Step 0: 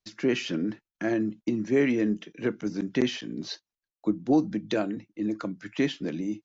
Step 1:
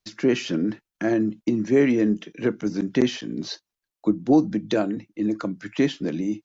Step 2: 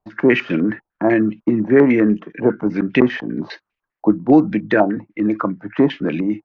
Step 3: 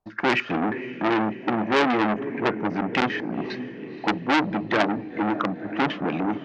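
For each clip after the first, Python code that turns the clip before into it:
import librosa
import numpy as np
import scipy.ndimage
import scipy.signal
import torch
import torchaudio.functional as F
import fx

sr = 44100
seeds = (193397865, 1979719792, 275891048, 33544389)

y1 = fx.dynamic_eq(x, sr, hz=2500.0, q=0.89, threshold_db=-44.0, ratio=4.0, max_db=-4)
y1 = F.gain(torch.from_numpy(y1), 5.0).numpy()
y2 = fx.filter_held_lowpass(y1, sr, hz=10.0, low_hz=830.0, high_hz=2500.0)
y2 = F.gain(torch.from_numpy(y2), 5.5).numpy()
y3 = fx.echo_diffused(y2, sr, ms=508, feedback_pct=57, wet_db=-15)
y3 = fx.transformer_sat(y3, sr, knee_hz=2100.0)
y3 = F.gain(torch.from_numpy(y3), -2.5).numpy()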